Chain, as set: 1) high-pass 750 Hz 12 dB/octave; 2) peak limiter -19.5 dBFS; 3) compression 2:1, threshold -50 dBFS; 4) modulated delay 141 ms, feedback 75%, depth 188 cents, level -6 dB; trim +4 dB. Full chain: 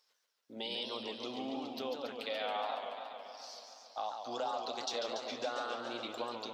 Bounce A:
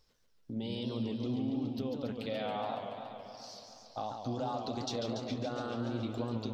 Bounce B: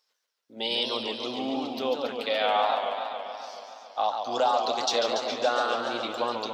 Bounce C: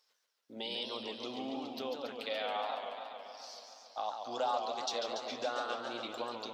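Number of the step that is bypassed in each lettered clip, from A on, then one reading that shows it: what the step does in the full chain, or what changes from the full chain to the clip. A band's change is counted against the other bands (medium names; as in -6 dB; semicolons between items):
1, 125 Hz band +24.5 dB; 3, mean gain reduction 9.5 dB; 2, crest factor change +1.5 dB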